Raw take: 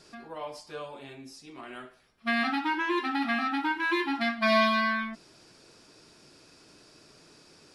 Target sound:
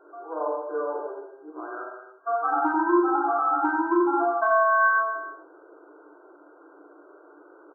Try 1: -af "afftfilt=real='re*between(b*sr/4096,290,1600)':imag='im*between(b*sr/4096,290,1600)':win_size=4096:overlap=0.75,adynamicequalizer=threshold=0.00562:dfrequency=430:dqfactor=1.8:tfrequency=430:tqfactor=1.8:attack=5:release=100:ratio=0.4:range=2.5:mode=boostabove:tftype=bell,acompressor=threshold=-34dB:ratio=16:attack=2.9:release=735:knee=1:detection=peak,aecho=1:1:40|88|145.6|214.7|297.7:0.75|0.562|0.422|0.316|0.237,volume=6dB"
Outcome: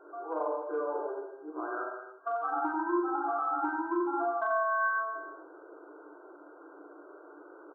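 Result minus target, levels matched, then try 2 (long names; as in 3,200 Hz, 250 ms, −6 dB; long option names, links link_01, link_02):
downward compressor: peak gain reduction +9 dB
-af "afftfilt=real='re*between(b*sr/4096,290,1600)':imag='im*between(b*sr/4096,290,1600)':win_size=4096:overlap=0.75,adynamicequalizer=threshold=0.00562:dfrequency=430:dqfactor=1.8:tfrequency=430:tqfactor=1.8:attack=5:release=100:ratio=0.4:range=2.5:mode=boostabove:tftype=bell,acompressor=threshold=-24.5dB:ratio=16:attack=2.9:release=735:knee=1:detection=peak,aecho=1:1:40|88|145.6|214.7|297.7:0.75|0.562|0.422|0.316|0.237,volume=6dB"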